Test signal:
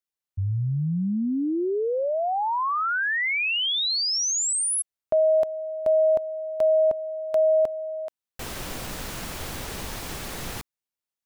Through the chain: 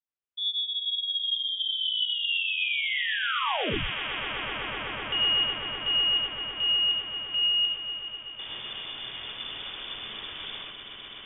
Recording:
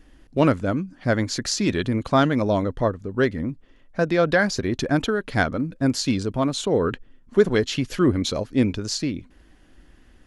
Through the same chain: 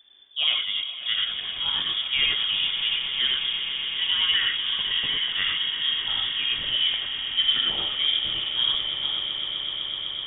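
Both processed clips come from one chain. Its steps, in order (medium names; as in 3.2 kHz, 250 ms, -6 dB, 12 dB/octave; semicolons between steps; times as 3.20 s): echo with a slow build-up 126 ms, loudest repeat 8, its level -14 dB; gated-style reverb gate 130 ms rising, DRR -1 dB; frequency inversion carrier 3.5 kHz; trim -8.5 dB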